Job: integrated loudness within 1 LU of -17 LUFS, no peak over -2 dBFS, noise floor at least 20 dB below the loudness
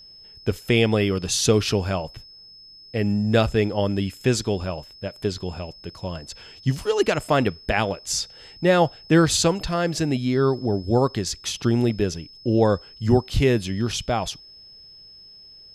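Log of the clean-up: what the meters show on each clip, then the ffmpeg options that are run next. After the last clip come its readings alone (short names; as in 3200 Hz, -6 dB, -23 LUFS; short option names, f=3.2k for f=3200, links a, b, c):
steady tone 5200 Hz; tone level -44 dBFS; loudness -22.5 LUFS; peak -4.5 dBFS; loudness target -17.0 LUFS
-> -af "bandreject=f=5.2k:w=30"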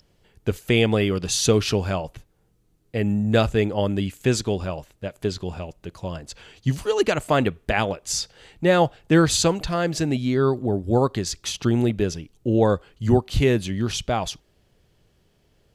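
steady tone none; loudness -22.5 LUFS; peak -4.5 dBFS; loudness target -17.0 LUFS
-> -af "volume=5.5dB,alimiter=limit=-2dB:level=0:latency=1"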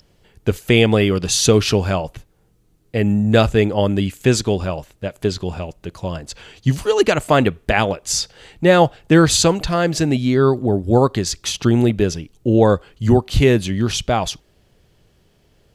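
loudness -17.5 LUFS; peak -2.0 dBFS; noise floor -58 dBFS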